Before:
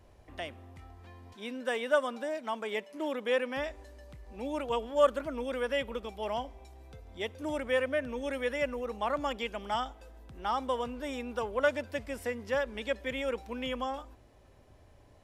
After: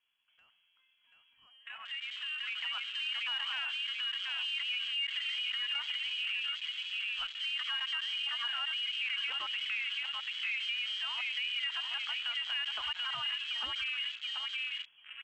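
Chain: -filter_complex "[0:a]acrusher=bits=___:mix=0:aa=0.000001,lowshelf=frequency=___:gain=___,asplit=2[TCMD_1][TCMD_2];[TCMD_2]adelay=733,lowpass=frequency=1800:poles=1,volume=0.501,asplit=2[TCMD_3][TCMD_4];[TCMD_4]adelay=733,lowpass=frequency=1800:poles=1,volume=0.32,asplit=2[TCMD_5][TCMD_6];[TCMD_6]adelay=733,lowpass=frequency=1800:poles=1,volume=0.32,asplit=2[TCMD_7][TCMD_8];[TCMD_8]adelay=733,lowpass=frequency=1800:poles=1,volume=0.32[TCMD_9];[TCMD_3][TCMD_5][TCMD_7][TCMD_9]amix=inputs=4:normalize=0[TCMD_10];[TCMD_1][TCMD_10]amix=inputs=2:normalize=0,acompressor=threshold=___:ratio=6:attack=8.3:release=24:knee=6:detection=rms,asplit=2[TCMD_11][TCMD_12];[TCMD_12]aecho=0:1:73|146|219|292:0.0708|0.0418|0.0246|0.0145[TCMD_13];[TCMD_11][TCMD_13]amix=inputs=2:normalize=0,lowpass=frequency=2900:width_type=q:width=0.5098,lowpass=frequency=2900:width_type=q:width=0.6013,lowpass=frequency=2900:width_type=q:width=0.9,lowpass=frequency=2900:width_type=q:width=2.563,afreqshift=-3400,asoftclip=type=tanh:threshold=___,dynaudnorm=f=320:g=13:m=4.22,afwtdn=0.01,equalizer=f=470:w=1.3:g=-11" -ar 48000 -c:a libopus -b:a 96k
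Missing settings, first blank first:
10, 240, -10.5, 0.00447, 0.015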